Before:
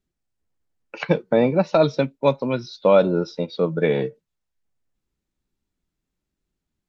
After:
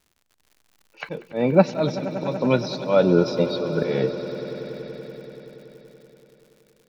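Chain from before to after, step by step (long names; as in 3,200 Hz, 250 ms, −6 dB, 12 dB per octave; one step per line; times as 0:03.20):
volume swells 269 ms
echo that builds up and dies away 95 ms, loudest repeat 5, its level −16.5 dB
surface crackle 120 per second −49 dBFS
level +4.5 dB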